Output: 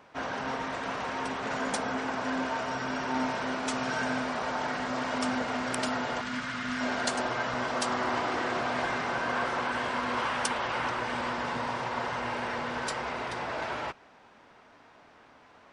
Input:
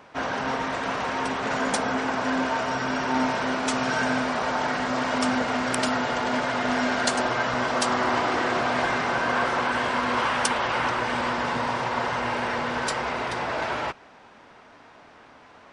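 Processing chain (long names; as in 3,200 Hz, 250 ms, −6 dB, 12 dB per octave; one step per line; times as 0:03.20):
0:06.21–0:06.81: flat-topped bell 560 Hz −12 dB
level −6 dB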